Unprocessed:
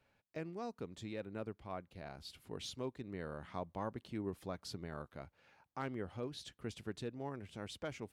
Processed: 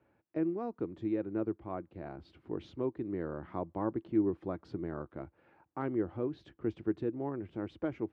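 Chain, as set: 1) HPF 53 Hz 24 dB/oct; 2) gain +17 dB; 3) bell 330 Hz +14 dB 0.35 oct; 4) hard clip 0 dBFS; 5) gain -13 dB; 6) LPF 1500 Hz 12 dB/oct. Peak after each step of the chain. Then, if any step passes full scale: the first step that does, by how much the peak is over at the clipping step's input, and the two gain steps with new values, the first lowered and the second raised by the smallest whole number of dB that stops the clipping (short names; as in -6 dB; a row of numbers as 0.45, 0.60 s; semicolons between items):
-26.0, -9.0, -5.5, -5.5, -18.5, -19.0 dBFS; no overload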